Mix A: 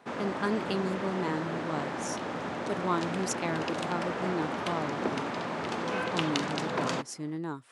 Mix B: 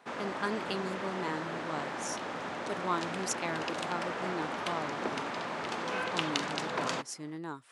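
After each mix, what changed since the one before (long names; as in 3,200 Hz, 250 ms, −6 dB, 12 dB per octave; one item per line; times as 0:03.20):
master: add low-shelf EQ 470 Hz −8 dB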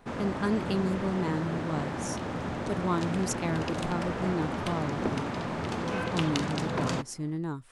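master: remove meter weighting curve A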